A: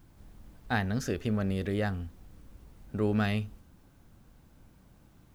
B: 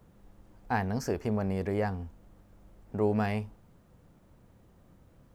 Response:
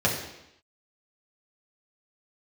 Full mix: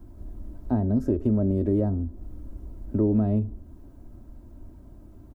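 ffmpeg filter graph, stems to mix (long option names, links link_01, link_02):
-filter_complex "[0:a]tiltshelf=frequency=1300:gain=8,aecho=1:1:3.1:0.89,volume=2dB[link_01];[1:a]adelay=0.3,volume=-2dB[link_02];[link_01][link_02]amix=inputs=2:normalize=0,equalizer=frequency=2400:width_type=o:width=2.2:gain=-9,acrossover=split=120|760[link_03][link_04][link_05];[link_03]acompressor=threshold=-32dB:ratio=4[link_06];[link_04]acompressor=threshold=-20dB:ratio=4[link_07];[link_05]acompressor=threshold=-57dB:ratio=4[link_08];[link_06][link_07][link_08]amix=inputs=3:normalize=0"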